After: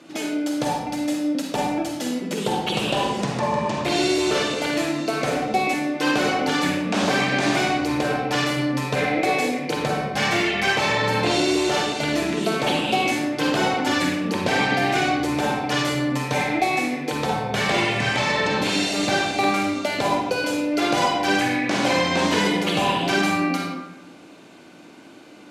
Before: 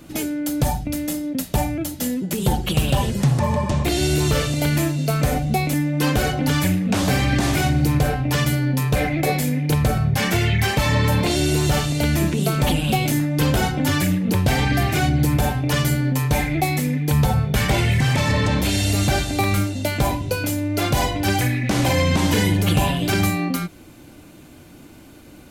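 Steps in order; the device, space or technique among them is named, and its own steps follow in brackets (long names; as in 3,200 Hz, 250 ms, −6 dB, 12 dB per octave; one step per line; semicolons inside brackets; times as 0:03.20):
supermarket ceiling speaker (band-pass filter 320–6,100 Hz; convolution reverb RT60 0.90 s, pre-delay 41 ms, DRR 0 dB)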